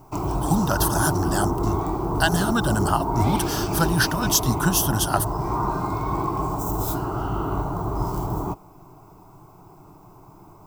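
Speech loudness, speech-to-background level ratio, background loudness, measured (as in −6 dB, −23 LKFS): −23.5 LKFS, 2.5 dB, −26.0 LKFS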